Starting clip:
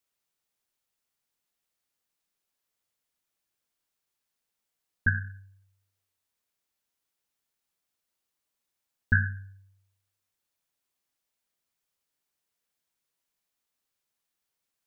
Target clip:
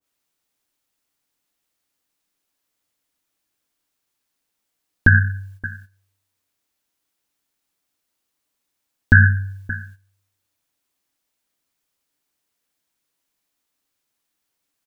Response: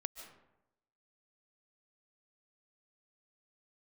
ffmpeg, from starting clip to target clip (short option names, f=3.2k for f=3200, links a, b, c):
-af "equalizer=f=290:w=6.2:g=8,aecho=1:1:573:0.0841,agate=range=-11dB:threshold=-58dB:ratio=16:detection=peak,alimiter=level_in=17.5dB:limit=-1dB:release=50:level=0:latency=1,adynamicequalizer=threshold=0.0398:dfrequency=1500:dqfactor=0.7:tfrequency=1500:tqfactor=0.7:attack=5:release=100:ratio=0.375:range=2:mode=cutabove:tftype=highshelf"